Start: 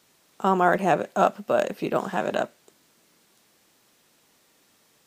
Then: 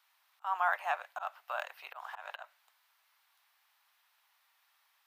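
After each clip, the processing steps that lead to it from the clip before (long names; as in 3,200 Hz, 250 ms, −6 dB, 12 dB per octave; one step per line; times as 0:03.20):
Butterworth high-pass 820 Hz 36 dB per octave
parametric band 7,400 Hz −13.5 dB 1.2 octaves
volume swells 157 ms
level −5 dB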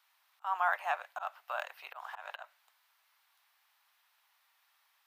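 no processing that can be heard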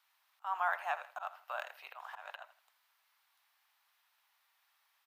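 repeating echo 82 ms, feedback 28%, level −15 dB
level −3 dB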